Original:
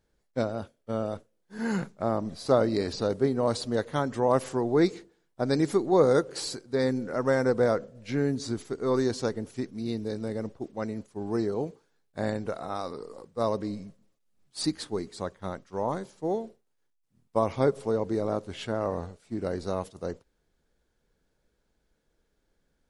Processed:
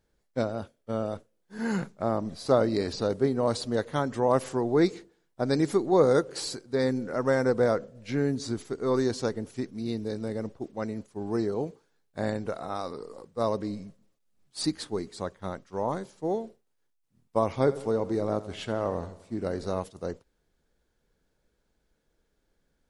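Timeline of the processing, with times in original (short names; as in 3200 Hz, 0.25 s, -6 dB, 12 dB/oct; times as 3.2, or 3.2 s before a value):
17.59–19.8 feedback echo 85 ms, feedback 53%, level -16.5 dB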